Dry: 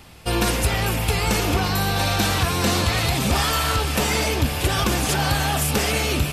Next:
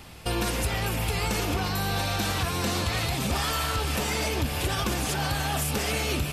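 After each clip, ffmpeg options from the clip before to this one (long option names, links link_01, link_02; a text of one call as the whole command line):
ffmpeg -i in.wav -af "alimiter=limit=-18dB:level=0:latency=1:release=306" out.wav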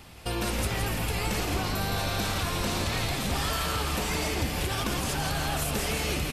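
ffmpeg -i in.wav -filter_complex "[0:a]asplit=8[link_01][link_02][link_03][link_04][link_05][link_06][link_07][link_08];[link_02]adelay=167,afreqshift=-120,volume=-5dB[link_09];[link_03]adelay=334,afreqshift=-240,volume=-10.5dB[link_10];[link_04]adelay=501,afreqshift=-360,volume=-16dB[link_11];[link_05]adelay=668,afreqshift=-480,volume=-21.5dB[link_12];[link_06]adelay=835,afreqshift=-600,volume=-27.1dB[link_13];[link_07]adelay=1002,afreqshift=-720,volume=-32.6dB[link_14];[link_08]adelay=1169,afreqshift=-840,volume=-38.1dB[link_15];[link_01][link_09][link_10][link_11][link_12][link_13][link_14][link_15]amix=inputs=8:normalize=0,volume=-3dB" out.wav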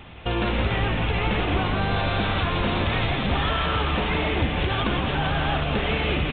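ffmpeg -i in.wav -af "aresample=8000,aresample=44100,volume=6dB" out.wav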